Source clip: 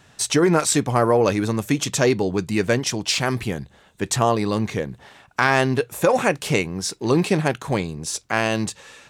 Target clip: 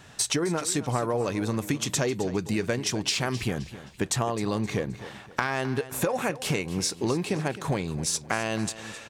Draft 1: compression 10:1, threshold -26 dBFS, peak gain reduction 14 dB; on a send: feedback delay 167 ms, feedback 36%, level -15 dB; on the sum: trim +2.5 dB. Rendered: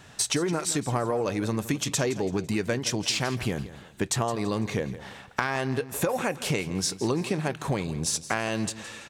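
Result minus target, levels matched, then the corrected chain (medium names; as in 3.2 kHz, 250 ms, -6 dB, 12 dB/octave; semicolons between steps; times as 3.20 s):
echo 95 ms early
compression 10:1, threshold -26 dBFS, peak gain reduction 14 dB; on a send: feedback delay 262 ms, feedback 36%, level -15 dB; on the sum: trim +2.5 dB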